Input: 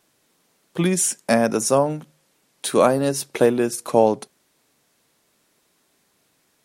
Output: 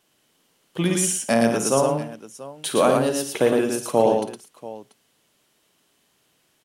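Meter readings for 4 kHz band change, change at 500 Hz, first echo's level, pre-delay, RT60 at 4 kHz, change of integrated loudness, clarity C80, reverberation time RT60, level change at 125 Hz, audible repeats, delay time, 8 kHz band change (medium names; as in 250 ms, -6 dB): +1.0 dB, -1.0 dB, -9.0 dB, no reverb, no reverb, -1.0 dB, no reverb, no reverb, -1.0 dB, 5, 52 ms, -1.0 dB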